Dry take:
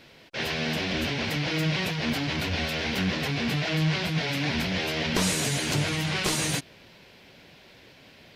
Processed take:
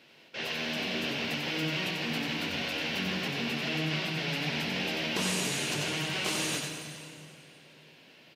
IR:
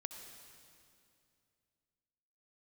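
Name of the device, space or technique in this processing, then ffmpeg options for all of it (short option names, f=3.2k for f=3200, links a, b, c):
PA in a hall: -filter_complex "[0:a]highpass=170,equalizer=f=2.8k:t=o:w=0.27:g=6,aecho=1:1:92:0.562[a];[1:a]atrim=start_sample=2205[b];[a][b]afir=irnorm=-1:irlink=0,volume=-3dB"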